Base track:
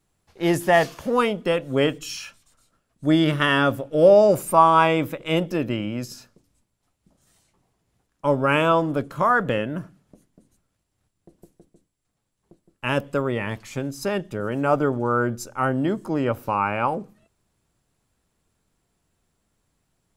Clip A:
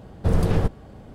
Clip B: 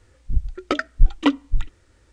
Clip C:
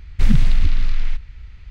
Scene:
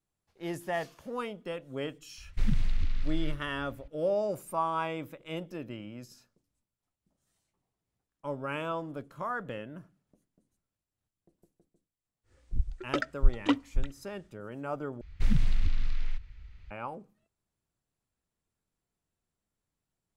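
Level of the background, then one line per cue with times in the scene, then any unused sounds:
base track -15.5 dB
2.18 s: add C -13 dB
12.23 s: add B -8 dB, fades 0.10 s
15.01 s: replace with C -11 dB
not used: A

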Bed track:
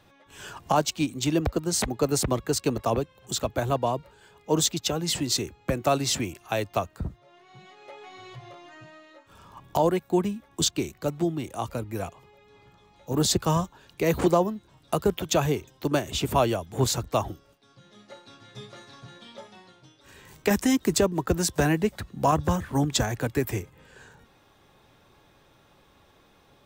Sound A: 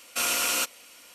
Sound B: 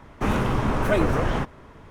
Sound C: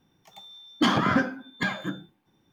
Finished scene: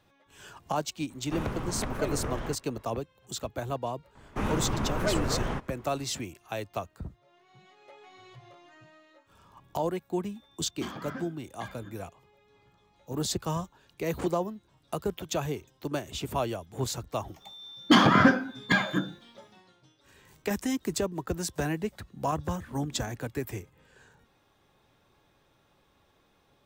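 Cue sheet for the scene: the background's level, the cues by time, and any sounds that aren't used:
bed track -7.5 dB
1.10 s: add B -12 dB
4.15 s: add B -7 dB
9.99 s: add C -17.5 dB
17.09 s: add C -3.5 dB + level rider gain up to 7.5 dB
22.51 s: add A -1.5 dB + inverse Chebyshev low-pass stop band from 1.2 kHz, stop band 70 dB

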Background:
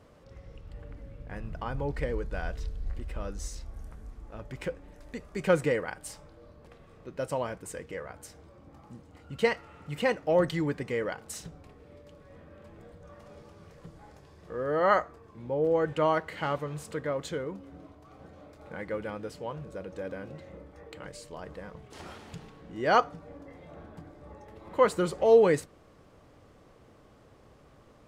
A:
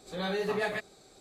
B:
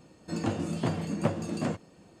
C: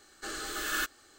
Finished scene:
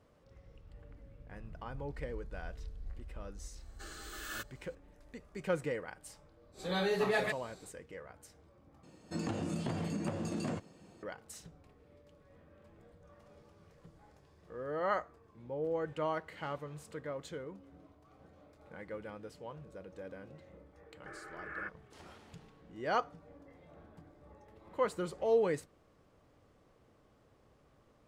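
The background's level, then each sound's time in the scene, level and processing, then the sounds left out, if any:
background -9.5 dB
3.57 s: add C -11 dB
6.52 s: add A -0.5 dB, fades 0.05 s
8.83 s: replace with B -2.5 dB + compression, threshold -29 dBFS
20.83 s: add C -8.5 dB + Chebyshev band-pass 320–2300 Hz, order 5

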